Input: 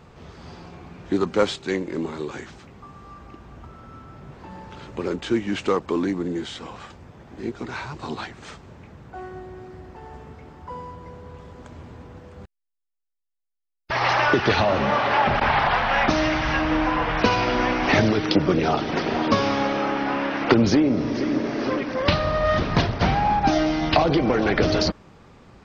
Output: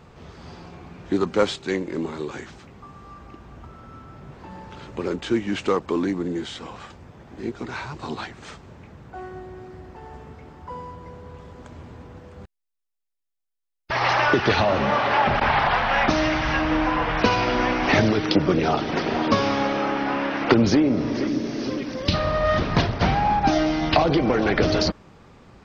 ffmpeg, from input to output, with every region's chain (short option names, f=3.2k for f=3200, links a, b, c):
-filter_complex "[0:a]asettb=1/sr,asplit=3[a][b][c];[a]atrim=end=21.274[d];[b]atrim=start=21.27:end=22.14,asetpts=PTS-STARTPTS,afade=t=in:d=0.004:c=qsin,afade=t=out:st=0.866:d=0.004:c=qsin,highshelf=f=6.9k:g=11.5,acrossover=split=420|3000[e][f][g];[f]acompressor=threshold=-42dB:ratio=2.5:attack=3.2:release=140:knee=2.83:detection=peak[h];[e][h][g]amix=inputs=3:normalize=0[i];[c]atrim=start=22.136[j];[d][i]acrossfade=d=0.004:c1=hsin:c2=qsin[k];[k][j]acrossfade=d=0.004:c1=qsin:c2=hsin"